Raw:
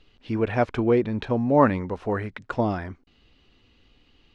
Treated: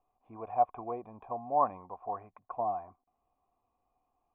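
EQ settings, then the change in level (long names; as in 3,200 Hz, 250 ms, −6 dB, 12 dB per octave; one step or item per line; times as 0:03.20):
dynamic equaliser 3,100 Hz, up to +5 dB, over −45 dBFS, Q 1.3
formant resonators in series a
+2.5 dB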